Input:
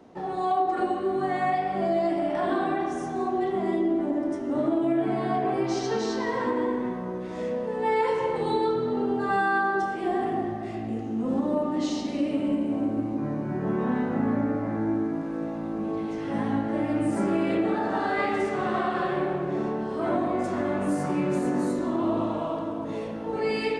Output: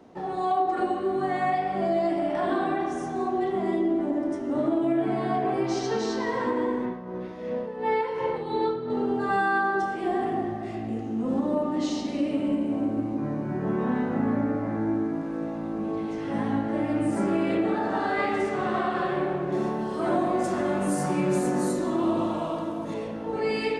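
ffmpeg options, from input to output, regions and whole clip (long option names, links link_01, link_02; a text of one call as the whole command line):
ffmpeg -i in.wav -filter_complex "[0:a]asettb=1/sr,asplit=3[link_01][link_02][link_03];[link_01]atrim=end=6.854[link_04];[link_02]atrim=start=6.85:end=8.9,asetpts=PTS-STARTPTS,afade=type=in:duration=0.004:curve=qsin,afade=type=out:start_time=2.046:duration=0.004:curve=qsin,equalizer=frequency=7800:width=2.1:gain=-14.5,tremolo=f=2.8:d=0.53[link_05];[link_03]atrim=start=8.896[link_06];[link_04][link_05]acrossfade=duration=0.004:curve1=hsin:curve2=qsin[link_07];[link_07][link_06]acrossfade=duration=0.004:curve1=qsin:curve2=hsin,asettb=1/sr,asplit=3[link_08][link_09][link_10];[link_08]atrim=end=19.524[link_11];[link_09]atrim=start=19.52:end=22.94,asetpts=PTS-STARTPTS,afade=type=in:duration=0.004:curve=qsin,afade=type=out:start_time=3.416:duration=0.004:curve=qsin,highshelf=frequency=5300:gain=10.5,aecho=1:1:5.6:0.39,atrim=end_sample=150822[link_12];[link_10]atrim=start=22.936[link_13];[link_11][link_12]acrossfade=duration=0.004:curve1=hsin:curve2=qsin[link_14];[link_14][link_13]acrossfade=duration=0.004:curve1=qsin:curve2=hsin" out.wav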